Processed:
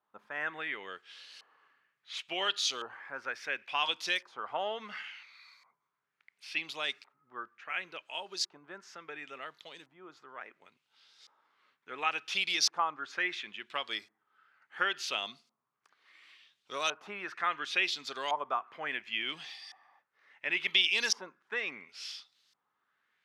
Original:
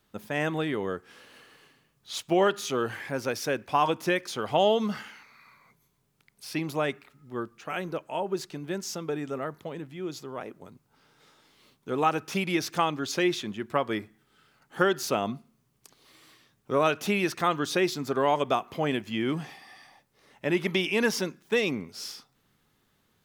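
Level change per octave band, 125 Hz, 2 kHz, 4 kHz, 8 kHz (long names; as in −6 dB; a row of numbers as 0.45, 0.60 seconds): −26.0, −1.0, +2.5, −2.0 decibels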